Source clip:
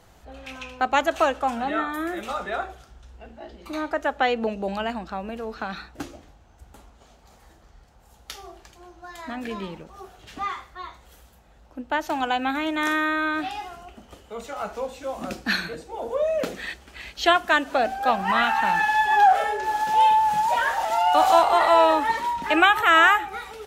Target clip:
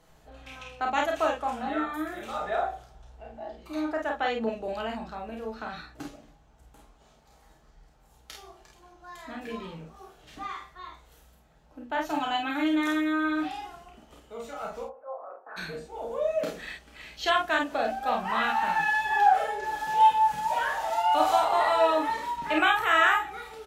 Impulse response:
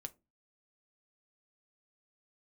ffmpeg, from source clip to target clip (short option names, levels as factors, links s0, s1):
-filter_complex "[0:a]asettb=1/sr,asplit=3[s0][s1][s2];[s0]atrim=end=2.364[s3];[s1]atrim=start=2.36:end=3.56,asetpts=PTS-STARTPTS,afade=t=in:d=0.004:c=qsin,afade=t=out:st=1.196:d=0.004:c=qsin,equalizer=f=730:t=o:w=0.87:g=8.5[s4];[s2]atrim=start=3.556[s5];[s3][s4]acrossfade=d=0.004:c1=hsin:c2=qsin[s6];[s6][s5]acrossfade=d=0.004:c1=qsin:c2=hsin,asettb=1/sr,asplit=3[s7][s8][s9];[s7]atrim=end=12.044[s10];[s8]atrim=start=12.04:end=12.75,asetpts=PTS-STARTPTS,afade=t=in:d=0.004:c=qsin,afade=t=out:st=0.706:d=0.004:c=qsin,aecho=1:1:7:0.73,atrim=end_sample=31311[s11];[s9]atrim=start=12.746[s12];[s10][s11]acrossfade=d=0.004:c1=hsin:c2=qsin[s13];[s13][s12]acrossfade=d=0.004:c1=qsin:c2=hsin,asplit=3[s14][s15][s16];[s14]afade=t=out:st=14.83:d=0.02[s17];[s15]asuperpass=centerf=770:order=8:qfactor=0.94,afade=t=in:st=14.83:d=0.02,afade=t=out:st=15.56:d=0.02[s18];[s16]afade=t=in:st=15.56:d=0.02[s19];[s17][s18][s19]amix=inputs=3:normalize=0,aecho=1:1:32|49:0.562|0.596[s20];[1:a]atrim=start_sample=2205,asetrate=48510,aresample=44100[s21];[s20][s21]afir=irnorm=-1:irlink=0,volume=0.75"